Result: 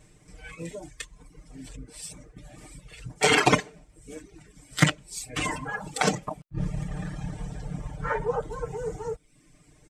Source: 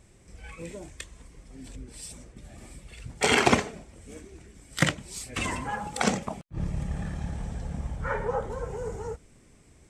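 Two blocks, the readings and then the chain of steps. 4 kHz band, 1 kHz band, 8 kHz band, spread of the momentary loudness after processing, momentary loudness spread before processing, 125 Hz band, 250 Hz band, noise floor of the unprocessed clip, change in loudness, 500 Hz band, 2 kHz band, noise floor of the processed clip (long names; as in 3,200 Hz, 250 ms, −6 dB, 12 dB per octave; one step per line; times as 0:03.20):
+2.0 dB, +1.5 dB, +1.5 dB, 22 LU, 22 LU, +2.0 dB, +0.5 dB, −57 dBFS, +1.5 dB, +1.5 dB, +1.5 dB, −59 dBFS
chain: reverb reduction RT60 0.84 s
comb filter 6.6 ms, depth 92%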